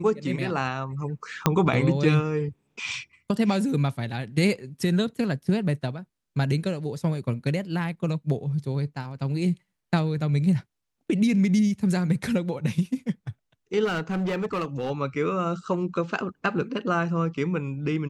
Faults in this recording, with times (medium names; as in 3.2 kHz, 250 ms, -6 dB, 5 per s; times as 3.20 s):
1.46 s: pop -4 dBFS
13.84–14.91 s: clipped -23.5 dBFS